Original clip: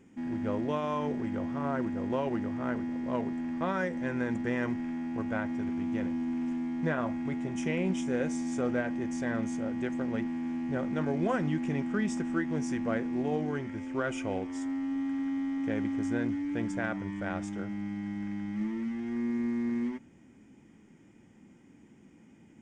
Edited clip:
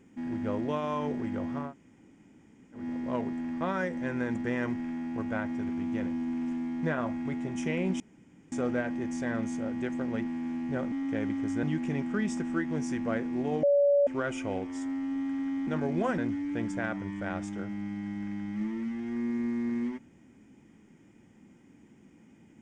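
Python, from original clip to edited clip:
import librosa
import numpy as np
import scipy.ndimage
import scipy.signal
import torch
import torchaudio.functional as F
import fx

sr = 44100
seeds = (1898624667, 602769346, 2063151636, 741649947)

y = fx.edit(x, sr, fx.room_tone_fill(start_s=1.66, length_s=1.14, crossfade_s=0.16),
    fx.room_tone_fill(start_s=8.0, length_s=0.52),
    fx.swap(start_s=10.92, length_s=0.51, other_s=15.47, other_length_s=0.71),
    fx.bleep(start_s=13.43, length_s=0.44, hz=570.0, db=-19.5), tone=tone)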